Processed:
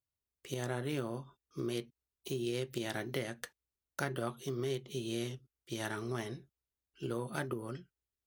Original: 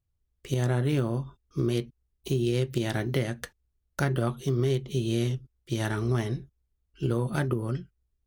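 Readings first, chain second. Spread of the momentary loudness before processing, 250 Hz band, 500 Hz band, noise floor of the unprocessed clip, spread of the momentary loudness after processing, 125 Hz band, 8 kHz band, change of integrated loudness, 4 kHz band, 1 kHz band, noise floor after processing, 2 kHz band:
10 LU, −10.0 dB, −8.0 dB, −77 dBFS, 12 LU, −15.0 dB, −4.5 dB, −10.0 dB, −5.5 dB, −6.0 dB, below −85 dBFS, −5.5 dB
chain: high-pass filter 360 Hz 6 dB per octave
high-shelf EQ 11,000 Hz +3.5 dB
level −5.5 dB

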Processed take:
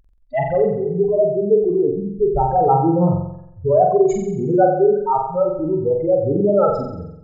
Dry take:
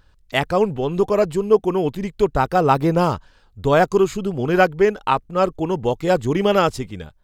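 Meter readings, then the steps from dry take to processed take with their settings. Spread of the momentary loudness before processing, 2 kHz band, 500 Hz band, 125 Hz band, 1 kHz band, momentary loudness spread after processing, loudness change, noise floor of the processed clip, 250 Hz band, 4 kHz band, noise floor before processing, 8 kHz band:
7 LU, below −10 dB, +2.5 dB, +1.0 dB, +1.0 dB, 7 LU, +1.5 dB, −45 dBFS, +1.0 dB, below −25 dB, −55 dBFS, can't be measured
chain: expanding power law on the bin magnitudes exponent 3.9
flutter between parallel walls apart 7.7 metres, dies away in 0.77 s

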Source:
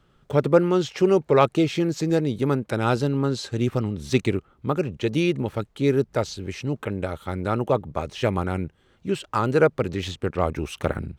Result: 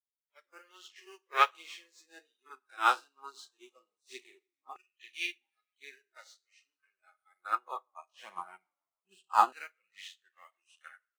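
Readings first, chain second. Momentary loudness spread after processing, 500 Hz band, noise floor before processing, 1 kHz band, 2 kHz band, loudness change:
23 LU, −27.0 dB, −62 dBFS, −3.5 dB, −6.0 dB, −7.0 dB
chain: spectrum smeared in time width 84 ms
high-shelf EQ 5,400 Hz +10.5 dB
downsampling to 22,050 Hz
in parallel at −12 dB: bit reduction 5 bits
on the sum: noise reduction from a noise print of the clip's start 20 dB
on a send: echo with shifted repeats 147 ms, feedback 59%, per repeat −35 Hz, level −24 dB
on the sum: flanger 1.2 Hz, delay 0.4 ms, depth 3.4 ms, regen +39%
high-pass filter sweep 390 Hz → 180 Hz, 0:07.39–0:08.74
reverb whose tail is shaped and stops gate 160 ms falling, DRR 10 dB
dynamic equaliser 3,100 Hz, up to +3 dB, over −50 dBFS, Q 4
auto-filter high-pass saw down 0.21 Hz 750–2,100 Hz
expander for the loud parts 2.5 to 1, over −44 dBFS
level +2.5 dB

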